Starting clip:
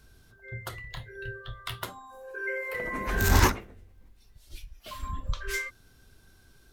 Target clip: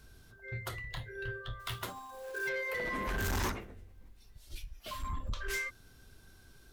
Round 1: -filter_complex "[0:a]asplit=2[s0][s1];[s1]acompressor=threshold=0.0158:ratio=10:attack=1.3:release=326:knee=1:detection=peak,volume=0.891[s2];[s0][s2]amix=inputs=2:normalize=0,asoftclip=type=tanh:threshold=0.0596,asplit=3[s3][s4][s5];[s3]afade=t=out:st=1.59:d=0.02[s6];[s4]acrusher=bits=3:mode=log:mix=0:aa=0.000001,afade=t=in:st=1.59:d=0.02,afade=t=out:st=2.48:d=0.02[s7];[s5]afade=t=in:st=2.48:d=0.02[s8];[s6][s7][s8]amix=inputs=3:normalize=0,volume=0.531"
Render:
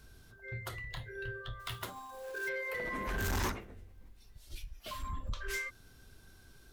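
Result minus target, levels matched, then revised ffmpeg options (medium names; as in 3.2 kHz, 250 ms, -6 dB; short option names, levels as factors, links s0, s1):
compression: peak gain reduction +9 dB
-filter_complex "[0:a]asplit=2[s0][s1];[s1]acompressor=threshold=0.0501:ratio=10:attack=1.3:release=326:knee=1:detection=peak,volume=0.891[s2];[s0][s2]amix=inputs=2:normalize=0,asoftclip=type=tanh:threshold=0.0596,asplit=3[s3][s4][s5];[s3]afade=t=out:st=1.59:d=0.02[s6];[s4]acrusher=bits=3:mode=log:mix=0:aa=0.000001,afade=t=in:st=1.59:d=0.02,afade=t=out:st=2.48:d=0.02[s7];[s5]afade=t=in:st=2.48:d=0.02[s8];[s6][s7][s8]amix=inputs=3:normalize=0,volume=0.531"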